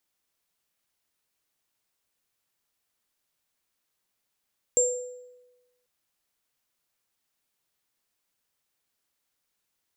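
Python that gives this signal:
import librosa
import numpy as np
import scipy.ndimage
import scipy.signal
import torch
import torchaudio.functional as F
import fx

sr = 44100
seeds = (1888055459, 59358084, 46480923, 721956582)

y = fx.additive_free(sr, length_s=1.09, hz=495.0, level_db=-21.0, upper_db=(4.0,), decay_s=1.14, upper_decays_s=(0.56,), upper_hz=(7390.0,))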